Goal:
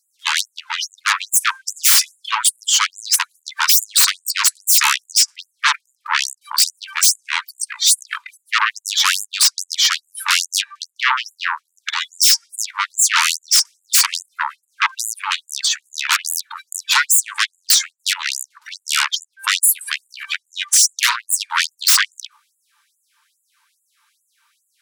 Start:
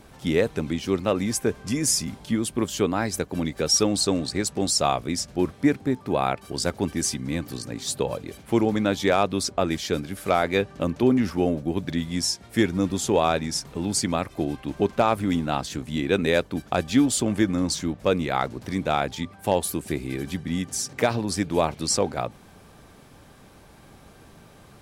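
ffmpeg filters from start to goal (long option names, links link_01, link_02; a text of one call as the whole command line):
ffmpeg -i in.wav -af "afftdn=noise_reduction=26:noise_floor=-38,adynamicequalizer=threshold=0.02:dfrequency=690:dqfactor=0.79:tfrequency=690:tqfactor=0.79:attack=5:release=100:ratio=0.375:range=3:mode=cutabove:tftype=bell,aeval=exprs='0.422*sin(PI/2*7.94*val(0)/0.422)':channel_layout=same,afftfilt=real='re*gte(b*sr/1024,840*pow(7000/840,0.5+0.5*sin(2*PI*2.4*pts/sr)))':imag='im*gte(b*sr/1024,840*pow(7000/840,0.5+0.5*sin(2*PI*2.4*pts/sr)))':win_size=1024:overlap=0.75" out.wav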